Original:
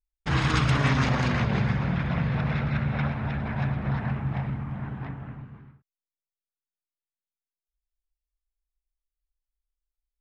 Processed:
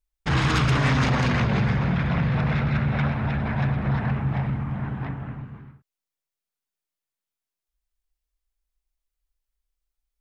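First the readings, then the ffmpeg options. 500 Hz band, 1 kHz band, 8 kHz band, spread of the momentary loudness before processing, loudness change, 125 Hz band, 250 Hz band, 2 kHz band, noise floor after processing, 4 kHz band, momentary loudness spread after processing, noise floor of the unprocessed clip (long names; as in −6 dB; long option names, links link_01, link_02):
+3.0 dB, +3.0 dB, can't be measured, 13 LU, +3.0 dB, +3.0 dB, +3.0 dB, +3.0 dB, below −85 dBFS, +2.5 dB, 10 LU, below −85 dBFS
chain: -af "asoftclip=type=tanh:threshold=-20dB,volume=5dB"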